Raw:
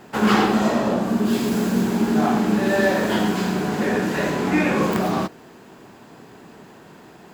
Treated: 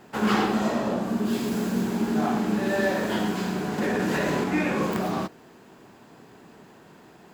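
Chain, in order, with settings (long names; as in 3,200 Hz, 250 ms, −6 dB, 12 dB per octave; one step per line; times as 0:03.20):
0:03.78–0:04.44: envelope flattener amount 100%
level −5.5 dB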